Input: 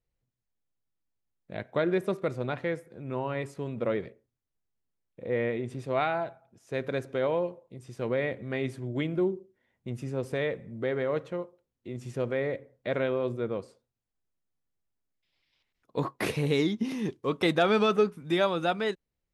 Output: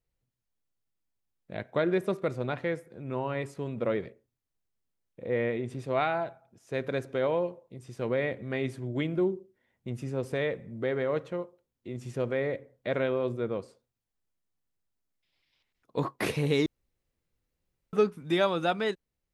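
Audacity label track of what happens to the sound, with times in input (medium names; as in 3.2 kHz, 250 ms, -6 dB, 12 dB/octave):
16.660000	17.930000	room tone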